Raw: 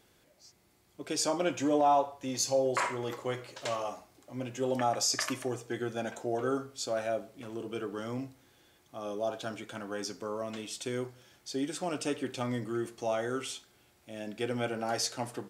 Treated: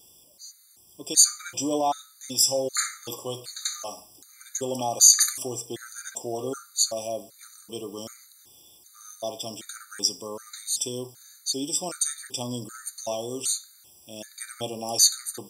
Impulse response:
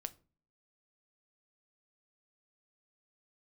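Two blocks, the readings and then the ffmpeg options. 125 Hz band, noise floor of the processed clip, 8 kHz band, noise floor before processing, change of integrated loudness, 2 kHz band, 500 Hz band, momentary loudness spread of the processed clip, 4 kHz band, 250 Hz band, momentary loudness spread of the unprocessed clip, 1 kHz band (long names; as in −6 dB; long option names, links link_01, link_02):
−1.5 dB, −55 dBFS, +16.5 dB, −66 dBFS, +9.0 dB, −2.0 dB, −0.5 dB, 19 LU, +11.0 dB, −1.5 dB, 13 LU, −1.5 dB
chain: -af "aexciter=amount=8.2:drive=3.1:freq=3600,afftfilt=real='re*gt(sin(2*PI*1.3*pts/sr)*(1-2*mod(floor(b*sr/1024/1200),2)),0)':imag='im*gt(sin(2*PI*1.3*pts/sr)*(1-2*mod(floor(b*sr/1024/1200),2)),0)':win_size=1024:overlap=0.75,volume=1dB"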